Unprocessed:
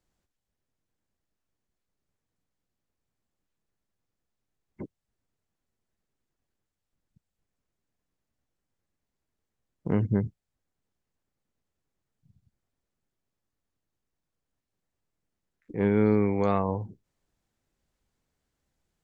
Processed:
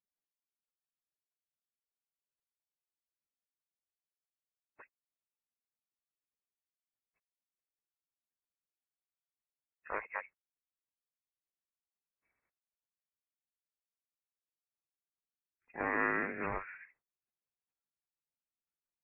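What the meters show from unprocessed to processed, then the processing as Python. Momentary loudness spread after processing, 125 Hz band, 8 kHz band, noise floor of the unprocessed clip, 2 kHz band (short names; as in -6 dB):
19 LU, -25.5 dB, n/a, -85 dBFS, +6.5 dB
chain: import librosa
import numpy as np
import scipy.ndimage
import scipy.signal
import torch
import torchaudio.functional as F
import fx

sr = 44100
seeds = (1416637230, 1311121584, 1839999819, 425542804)

y = fx.highpass(x, sr, hz=440.0, slope=6)
y = fx.spec_gate(y, sr, threshold_db=-20, keep='weak')
y = fx.freq_invert(y, sr, carrier_hz=2600)
y = y * 10.0 ** (9.0 / 20.0)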